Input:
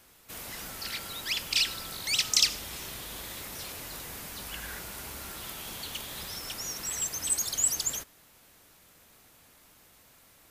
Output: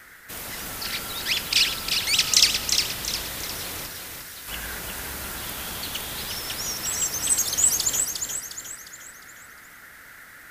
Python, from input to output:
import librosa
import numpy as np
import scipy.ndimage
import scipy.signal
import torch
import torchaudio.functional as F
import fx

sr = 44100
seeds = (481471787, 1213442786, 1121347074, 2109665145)

p1 = fx.tone_stack(x, sr, knobs='5-5-5', at=(3.86, 4.48))
p2 = fx.dmg_noise_band(p1, sr, seeds[0], low_hz=1300.0, high_hz=2100.0, level_db=-55.0)
p3 = p2 + fx.echo_feedback(p2, sr, ms=356, feedback_pct=45, wet_db=-5.5, dry=0)
y = p3 * librosa.db_to_amplitude(6.0)